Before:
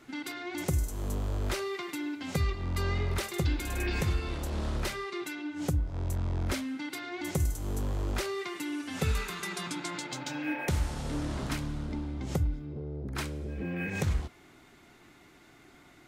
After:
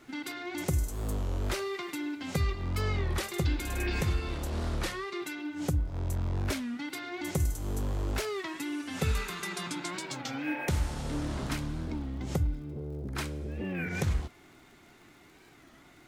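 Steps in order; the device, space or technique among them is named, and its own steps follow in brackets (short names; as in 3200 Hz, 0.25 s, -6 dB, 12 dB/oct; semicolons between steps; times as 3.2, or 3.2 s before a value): warped LP (record warp 33 1/3 rpm, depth 160 cents; crackle 52/s -50 dBFS; pink noise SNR 43 dB)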